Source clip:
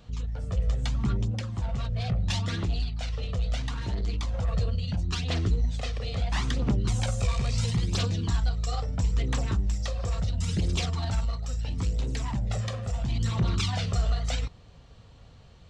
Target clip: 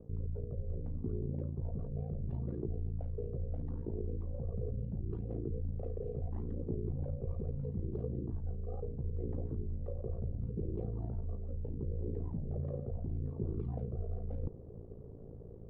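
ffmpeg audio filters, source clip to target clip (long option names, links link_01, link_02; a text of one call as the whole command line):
ffmpeg -i in.wav -af "lowpass=frequency=410:width_type=q:width=4.7,areverse,acompressor=threshold=-37dB:ratio=6,areverse,aeval=exprs='val(0)*sin(2*PI*28*n/s)':channel_layout=same,aemphasis=mode=reproduction:type=75kf,volume=4.5dB" out.wav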